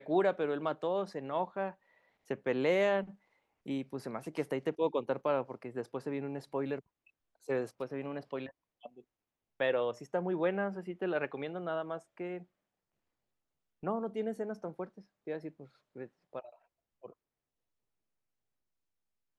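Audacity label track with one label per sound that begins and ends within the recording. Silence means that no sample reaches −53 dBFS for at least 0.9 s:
13.830000	17.120000	sound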